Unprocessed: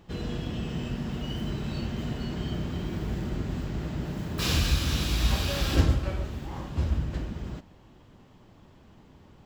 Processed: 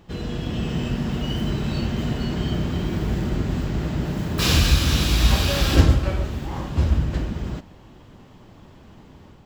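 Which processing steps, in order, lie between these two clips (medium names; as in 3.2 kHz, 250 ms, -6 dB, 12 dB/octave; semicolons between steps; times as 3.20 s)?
level rider gain up to 4 dB; trim +3.5 dB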